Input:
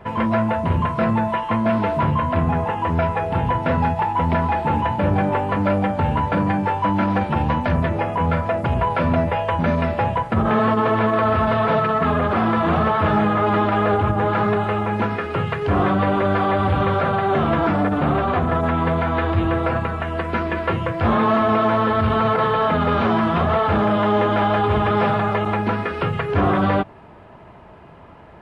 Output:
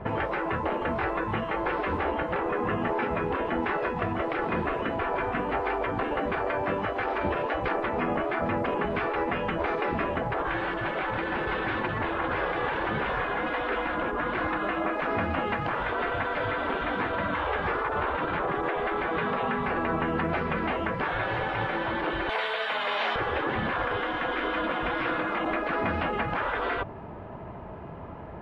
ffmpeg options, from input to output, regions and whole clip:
-filter_complex "[0:a]asettb=1/sr,asplit=3[s0][s1][s2];[s0]atrim=end=22.294[s3];[s1]atrim=start=22.29:end=23.16,asetpts=PTS-STARTPTS,afade=t=in:d=0.004:c=qsin,afade=t=out:st=0.866:d=0.004:c=qsin,highpass=810,tiltshelf=f=1100:g=-10[s4];[s2]atrim=start=23.156[s5];[s3][s4]acrossfade=d=0.004:c1=hsin:c2=qsin[s6];[s6][s5]acrossfade=d=0.004:c1=qsin:c2=hsin,afftfilt=real='re*lt(hypot(re,im),0.224)':imag='im*lt(hypot(re,im),0.224)':win_size=1024:overlap=0.75,lowpass=f=1100:p=1,volume=1.68"

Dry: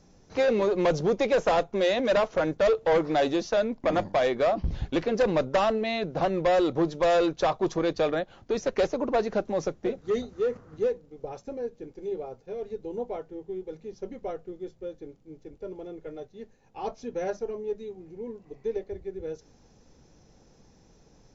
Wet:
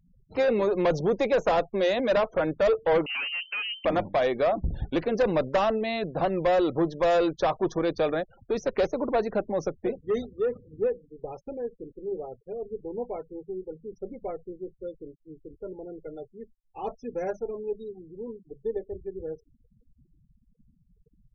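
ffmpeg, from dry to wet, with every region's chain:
-filter_complex "[0:a]asettb=1/sr,asplit=3[s0][s1][s2];[s0]atrim=end=3.064[s3];[s1]atrim=start=3.06:end=3.85,asetpts=PTS-STARTPTS,afade=t=in:d=0.004:c=qsin,afade=t=out:st=0.786:d=0.004:c=qsin,lowshelf=f=210:g=6.5,aeval=exprs='(tanh(25.1*val(0)+0.2)-tanh(0.2))/25.1':c=same,lowpass=f=2600:t=q:w=0.5098,lowpass=f=2600:t=q:w=0.6013,lowpass=f=2600:t=q:w=0.9,lowpass=f=2600:t=q:w=2.563,afreqshift=-3100[s4];[s2]atrim=start=3.846[s5];[s3][s4]acrossfade=d=0.004:c1=hsin:c2=qsin[s6];[s6][s5]acrossfade=d=0.004:c1=qsin:c2=hsin,afftfilt=real='re*gte(hypot(re,im),0.00794)':imag='im*gte(hypot(re,im),0.00794)':win_size=1024:overlap=0.75,highshelf=f=5200:g=-5.5"

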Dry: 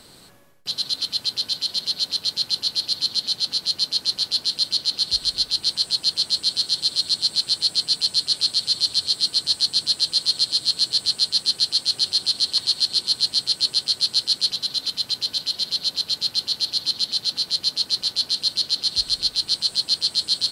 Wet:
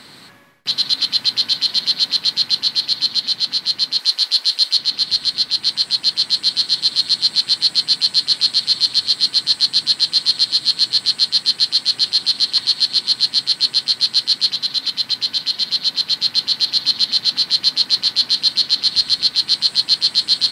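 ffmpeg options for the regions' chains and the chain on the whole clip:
-filter_complex "[0:a]asettb=1/sr,asplit=3[s0][s1][s2];[s0]atrim=end=3.994[s3];[s1]atrim=start=3.99:end=4.79,asetpts=PTS-STARTPTS,afade=t=in:d=0.004:c=qsin,afade=t=out:st=0.796:d=0.004:c=qsin,highpass=460,highshelf=f=5300:g=6[s4];[s2]atrim=start=4.786[s5];[s3][s4]acrossfade=d=0.004:c1=hsin:c2=qsin[s6];[s6][s5]acrossfade=d=0.004:c1=qsin:c2=hsin,equalizer=f=125:t=o:w=1:g=6,equalizer=f=250:t=o:w=1:g=8,equalizer=f=1000:t=o:w=1:g=7,equalizer=f=2000:t=o:w=1:g=12,equalizer=f=4000:t=o:w=1:g=6,dynaudnorm=f=390:g=9:m=3.76,lowshelf=f=62:g=-10.5,volume=0.891"

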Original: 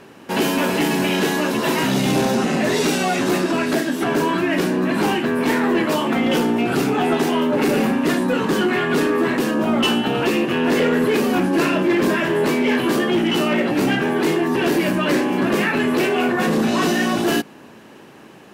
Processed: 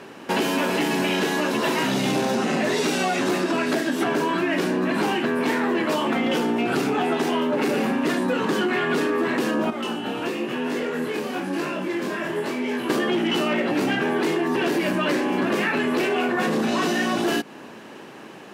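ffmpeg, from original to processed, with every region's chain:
-filter_complex "[0:a]asettb=1/sr,asplit=3[s0][s1][s2];[s0]atrim=end=9.704[s3];[s1]atrim=start=9.7:end=12.9,asetpts=PTS-STARTPTS,afade=t=in:d=0.004:c=qsin,afade=t=out:st=3.196:d=0.004:c=qsin,highpass=46,acrossover=split=1500|5900[s4][s5][s6];[s4]acompressor=threshold=0.0562:ratio=4[s7];[s5]acompressor=threshold=0.0141:ratio=4[s8];[s6]acompressor=threshold=0.00562:ratio=4[s9];[s7][s8][s9]amix=inputs=3:normalize=0,flanger=delay=19.5:depth=6.8:speed=1[s10];[s2]atrim=start=12.896[s11];[s3][s10]acrossfade=d=0.004:c1=hsin:c2=qsin[s12];[s12][s11]acrossfade=d=0.004:c1=qsin:c2=hsin,highpass=f=210:p=1,highshelf=f=11000:g=-8.5,acompressor=threshold=0.0708:ratio=6,volume=1.5"

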